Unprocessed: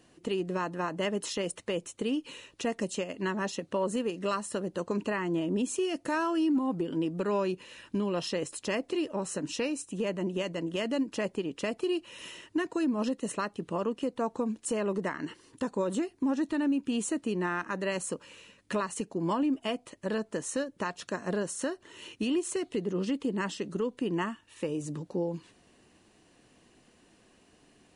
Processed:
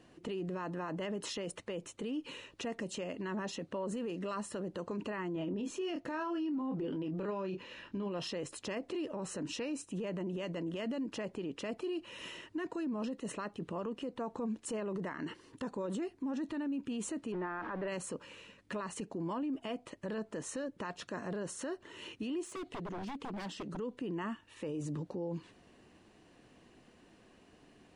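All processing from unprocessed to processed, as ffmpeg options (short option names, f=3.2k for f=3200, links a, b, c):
-filter_complex "[0:a]asettb=1/sr,asplit=3[a][b][c];[a]atrim=end=5.334[d];[b]atrim=start=5.33:end=8.12,asetpts=PTS-STARTPTS,afade=t=in:d=0.004:c=qsin,afade=t=out:st=2.786:d=0.004:c=qsin,equalizer=f=8.9k:w=1.9:g=-12.5,asplit=2[e][f];[f]adelay=26,volume=-8dB[g];[e][g]amix=inputs=2:normalize=0,atrim=end_sample=123039[h];[c]atrim=start=8.116[i];[d][h]acrossfade=d=0.004:c1=hsin:c2=qsin[j];[j][i]acrossfade=d=0.004:c1=qsin:c2=hsin,asettb=1/sr,asplit=3[k][l][m];[k]atrim=end=17.324[n];[l]atrim=start=17.32:end=17.88,asetpts=PTS-STARTPTS,afade=t=in:d=0.004:c=qsin,afade=t=out:st=0.556:d=0.004:c=qsin,aeval=exprs='val(0)+0.5*0.0158*sgn(val(0))':c=same,lowpass=1.6k,equalizer=f=160:t=o:w=2.3:g=-7[o];[m]atrim=start=17.876[p];[n][o]acrossfade=d=0.004:c1=hsin:c2=qsin[q];[q][p]acrossfade=d=0.004:c1=qsin:c2=hsin,asettb=1/sr,asplit=3[r][s][t];[r]atrim=end=22.444[u];[s]atrim=start=22.44:end=23.79,asetpts=PTS-STARTPTS,afade=t=in:d=0.004:c=qsin,afade=t=out:st=1.346:d=0.004:c=qsin,aeval=exprs='0.0299*(abs(mod(val(0)/0.0299+3,4)-2)-1)':c=same,acompressor=threshold=-39dB:ratio=6:attack=3.2:release=140:knee=1:detection=peak[v];[t]atrim=start=23.786[w];[u][v]acrossfade=d=0.004:c1=hsin:c2=qsin[x];[x][w]acrossfade=d=0.004:c1=qsin:c2=hsin,lowpass=f=3.1k:p=1,alimiter=level_in=8dB:limit=-24dB:level=0:latency=1:release=25,volume=-8dB,volume=1dB"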